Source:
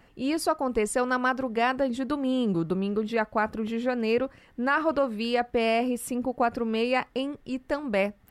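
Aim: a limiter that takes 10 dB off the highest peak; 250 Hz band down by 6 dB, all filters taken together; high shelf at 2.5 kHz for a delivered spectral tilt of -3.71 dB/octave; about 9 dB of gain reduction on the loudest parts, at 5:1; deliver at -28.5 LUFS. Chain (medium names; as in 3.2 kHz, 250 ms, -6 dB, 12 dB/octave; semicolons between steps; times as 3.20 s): peaking EQ 250 Hz -7 dB; treble shelf 2.5 kHz +6 dB; compression 5:1, threshold -30 dBFS; trim +9.5 dB; peak limiter -19 dBFS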